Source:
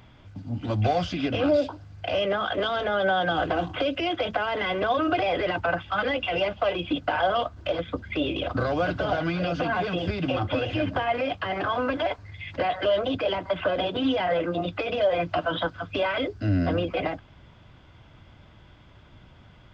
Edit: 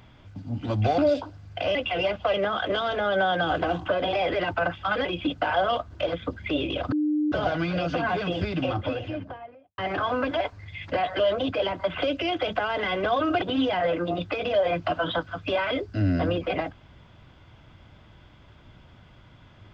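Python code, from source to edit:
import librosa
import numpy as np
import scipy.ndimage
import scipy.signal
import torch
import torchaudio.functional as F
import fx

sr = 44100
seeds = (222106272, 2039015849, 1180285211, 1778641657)

y = fx.studio_fade_out(x, sr, start_s=10.16, length_s=1.28)
y = fx.edit(y, sr, fx.cut(start_s=0.98, length_s=0.47),
    fx.swap(start_s=3.76, length_s=1.44, other_s=13.64, other_length_s=0.25),
    fx.move(start_s=6.12, length_s=0.59, to_s=2.22),
    fx.bleep(start_s=8.58, length_s=0.4, hz=301.0, db=-21.0), tone=tone)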